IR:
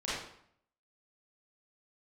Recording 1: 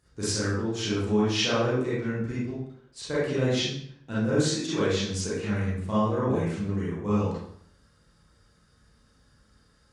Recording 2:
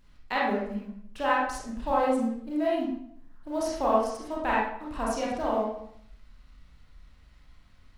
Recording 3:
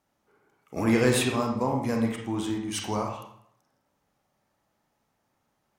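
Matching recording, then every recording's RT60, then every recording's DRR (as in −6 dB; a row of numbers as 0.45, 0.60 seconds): 1; 0.65, 0.65, 0.65 seconds; −10.0, −6.0, 1.5 decibels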